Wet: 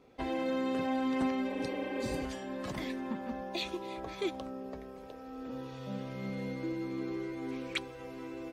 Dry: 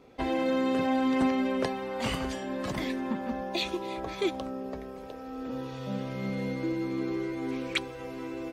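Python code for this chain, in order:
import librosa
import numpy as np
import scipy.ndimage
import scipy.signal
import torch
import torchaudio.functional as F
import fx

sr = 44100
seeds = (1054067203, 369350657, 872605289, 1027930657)

y = fx.spec_repair(x, sr, seeds[0], start_s=1.51, length_s=0.71, low_hz=270.0, high_hz=3500.0, source='before')
y = F.gain(torch.from_numpy(y), -5.5).numpy()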